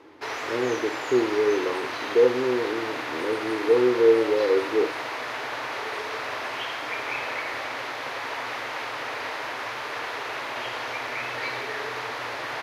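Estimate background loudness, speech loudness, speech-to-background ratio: -31.0 LUFS, -24.0 LUFS, 7.0 dB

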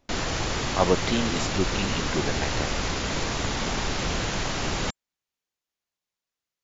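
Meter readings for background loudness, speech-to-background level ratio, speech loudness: -28.0 LUFS, -1.0 dB, -29.0 LUFS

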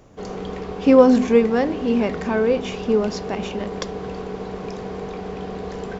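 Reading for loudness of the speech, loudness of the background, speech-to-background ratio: -19.0 LUFS, -31.0 LUFS, 12.0 dB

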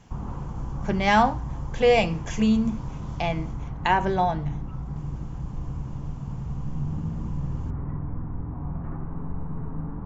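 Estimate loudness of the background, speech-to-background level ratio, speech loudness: -34.0 LUFS, 10.0 dB, -24.0 LUFS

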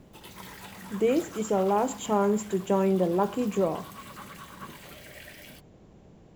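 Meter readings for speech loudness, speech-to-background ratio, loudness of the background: -26.5 LUFS, 18.5 dB, -45.0 LUFS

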